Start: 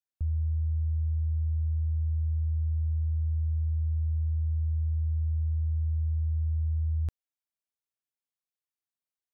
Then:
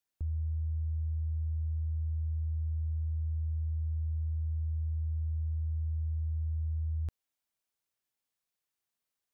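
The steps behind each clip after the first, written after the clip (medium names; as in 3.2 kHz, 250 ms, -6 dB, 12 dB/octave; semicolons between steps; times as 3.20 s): peak limiter -35 dBFS, peak gain reduction 10.5 dB; trim +5.5 dB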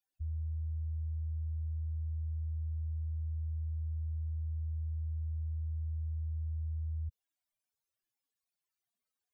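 spectral contrast enhancement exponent 3.7; trim -3 dB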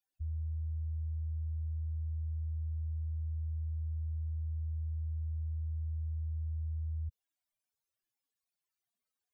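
no audible change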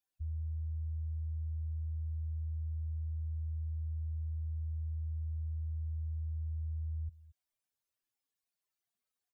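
delay 224 ms -19.5 dB; trim -1 dB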